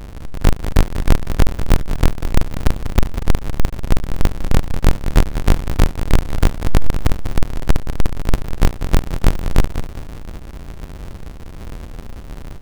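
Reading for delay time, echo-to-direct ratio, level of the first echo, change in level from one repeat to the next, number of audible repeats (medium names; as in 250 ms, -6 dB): 195 ms, -9.5 dB, -10.0 dB, -8.5 dB, 3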